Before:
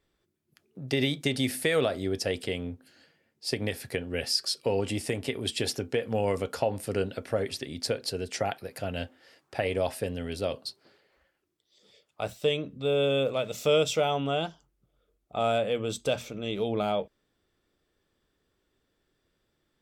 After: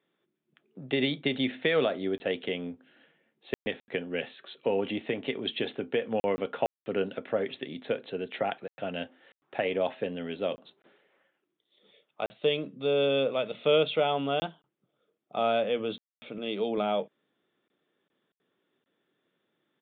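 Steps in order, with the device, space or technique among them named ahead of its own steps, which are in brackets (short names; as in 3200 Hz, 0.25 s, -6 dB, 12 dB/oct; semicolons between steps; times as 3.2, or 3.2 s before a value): call with lost packets (HPF 160 Hz 24 dB/oct; downsampling 8000 Hz; packet loss packets of 20 ms bursts); 16.38–16.78 HPF 160 Hz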